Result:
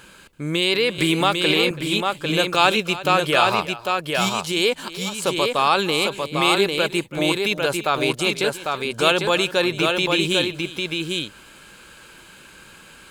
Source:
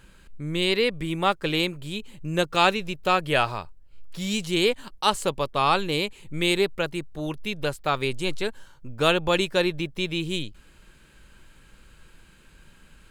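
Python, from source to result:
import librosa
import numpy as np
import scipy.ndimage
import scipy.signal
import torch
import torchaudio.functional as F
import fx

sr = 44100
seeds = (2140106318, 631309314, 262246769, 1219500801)

p1 = fx.highpass(x, sr, hz=390.0, slope=6)
p2 = fx.notch(p1, sr, hz=1900.0, q=12.0)
p3 = fx.over_compress(p2, sr, threshold_db=-31.0, ratio=-0.5)
p4 = p2 + (p3 * 10.0 ** (-2.0 / 20.0))
p5 = fx.auto_swell(p4, sr, attack_ms=508.0, at=(4.28, 5.22), fade=0.02)
p6 = p5 + fx.echo_multitap(p5, sr, ms=(331, 799), db=(-16.5, -4.0), dry=0)
p7 = fx.band_squash(p6, sr, depth_pct=70, at=(0.98, 1.71))
y = p7 * 10.0 ** (3.5 / 20.0)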